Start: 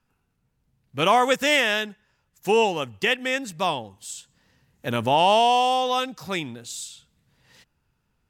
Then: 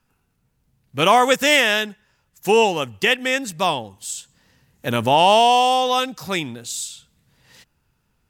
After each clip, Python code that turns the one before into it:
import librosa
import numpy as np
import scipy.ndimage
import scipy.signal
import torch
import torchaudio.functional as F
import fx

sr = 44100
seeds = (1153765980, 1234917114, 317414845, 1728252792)

y = fx.high_shelf(x, sr, hz=6400.0, db=5.0)
y = y * 10.0 ** (4.0 / 20.0)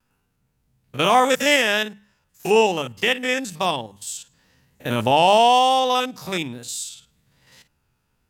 y = fx.spec_steps(x, sr, hold_ms=50)
y = fx.hum_notches(y, sr, base_hz=50, count=4)
y = fx.vibrato(y, sr, rate_hz=1.1, depth_cents=41.0)